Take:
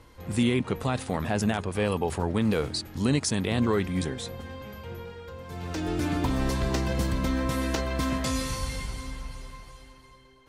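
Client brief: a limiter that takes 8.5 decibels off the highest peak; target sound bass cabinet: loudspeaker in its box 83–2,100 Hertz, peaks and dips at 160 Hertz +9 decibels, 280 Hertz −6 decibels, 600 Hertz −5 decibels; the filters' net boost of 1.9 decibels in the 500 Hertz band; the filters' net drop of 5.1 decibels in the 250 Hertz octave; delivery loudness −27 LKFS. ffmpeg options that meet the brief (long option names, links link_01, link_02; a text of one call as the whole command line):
ffmpeg -i in.wav -af "equalizer=frequency=250:width_type=o:gain=-8.5,equalizer=frequency=500:width_type=o:gain=7,alimiter=limit=-21dB:level=0:latency=1,highpass=frequency=83:width=0.5412,highpass=frequency=83:width=1.3066,equalizer=frequency=160:width_type=q:width=4:gain=9,equalizer=frequency=280:width_type=q:width=4:gain=-6,equalizer=frequency=600:width_type=q:width=4:gain=-5,lowpass=frequency=2100:width=0.5412,lowpass=frequency=2100:width=1.3066,volume=6.5dB" out.wav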